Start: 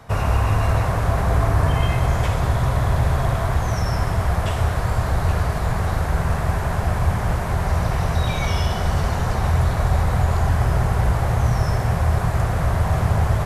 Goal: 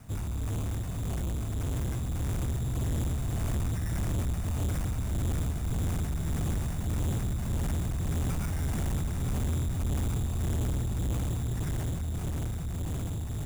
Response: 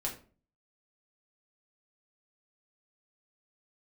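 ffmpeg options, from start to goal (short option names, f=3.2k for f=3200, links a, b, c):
-filter_complex "[0:a]equalizer=f=250:t=o:w=1:g=4,equalizer=f=500:t=o:w=1:g=-12,equalizer=f=1k:t=o:w=1:g=-10,equalizer=f=2k:t=o:w=1:g=-8,equalizer=f=8k:t=o:w=1:g=-5,acrusher=samples=12:mix=1:aa=0.000001,asplit=2[a][b];[1:a]atrim=start_sample=2205,adelay=104[c];[b][c]afir=irnorm=-1:irlink=0,volume=-18dB[d];[a][d]amix=inputs=2:normalize=0,tremolo=f=1.7:d=0.56,highshelf=f=5.9k:t=q:w=1.5:g=6.5,asoftclip=type=tanh:threshold=-27.5dB,dynaudnorm=f=350:g=13:m=3dB,volume=-2dB"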